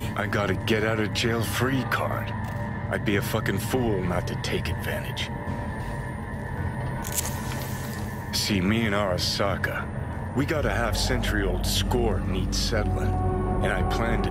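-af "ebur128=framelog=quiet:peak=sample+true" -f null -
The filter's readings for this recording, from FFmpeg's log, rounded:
Integrated loudness:
  I:         -26.5 LUFS
  Threshold: -36.5 LUFS
Loudness range:
  LRA:         4.6 LU
  Threshold: -46.8 LUFS
  LRA low:   -30.0 LUFS
  LRA high:  -25.5 LUFS
Sample peak:
  Peak:      -11.8 dBFS
True peak:
  Peak:      -11.7 dBFS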